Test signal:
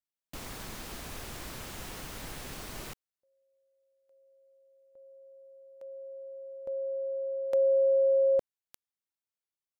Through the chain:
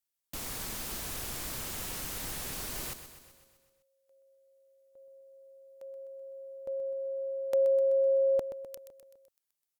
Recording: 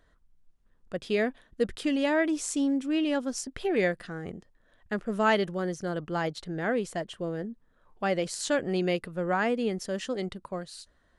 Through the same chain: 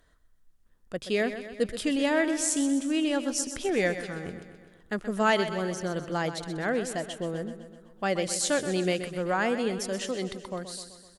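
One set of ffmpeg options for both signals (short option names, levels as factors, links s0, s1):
-af "aemphasis=mode=production:type=cd,aecho=1:1:127|254|381|508|635|762|889:0.282|0.166|0.0981|0.0579|0.0342|0.0201|0.0119"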